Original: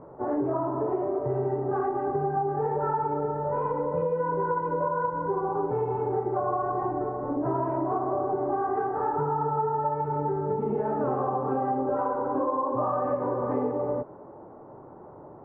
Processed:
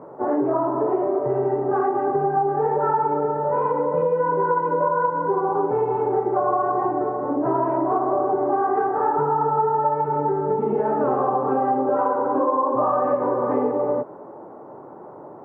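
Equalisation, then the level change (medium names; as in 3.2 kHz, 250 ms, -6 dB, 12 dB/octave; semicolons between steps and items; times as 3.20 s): Bessel high-pass 220 Hz, order 2; +7.0 dB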